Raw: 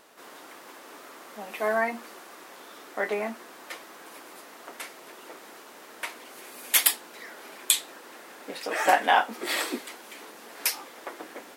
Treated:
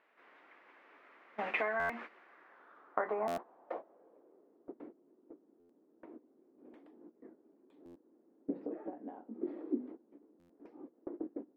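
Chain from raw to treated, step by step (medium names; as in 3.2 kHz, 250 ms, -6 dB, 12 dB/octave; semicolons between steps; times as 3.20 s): high-pass 160 Hz 6 dB/octave; hum notches 50/100/150/200/250 Hz; gate -41 dBFS, range -20 dB; treble shelf 4 kHz -5 dB; compression 10:1, threshold -37 dBFS, peak gain reduction 21 dB; low-pass sweep 2.2 kHz -> 300 Hz, 2.16–4.83 s; buffer glitch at 1.79/3.27/5.59/7.85/10.39 s, samples 512, times 8; trim +3.5 dB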